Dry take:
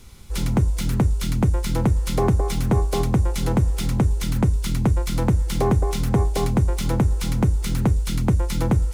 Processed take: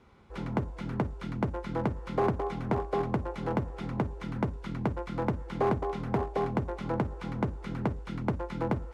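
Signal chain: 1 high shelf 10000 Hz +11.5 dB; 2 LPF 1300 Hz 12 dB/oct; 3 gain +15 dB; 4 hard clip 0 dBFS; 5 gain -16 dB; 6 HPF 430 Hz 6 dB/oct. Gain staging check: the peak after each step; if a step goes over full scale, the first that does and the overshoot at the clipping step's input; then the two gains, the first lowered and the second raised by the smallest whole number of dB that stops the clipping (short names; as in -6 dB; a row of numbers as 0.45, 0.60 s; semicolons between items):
-11.0, -11.5, +3.5, 0.0, -16.0, -14.5 dBFS; step 3, 3.5 dB; step 3 +11 dB, step 5 -12 dB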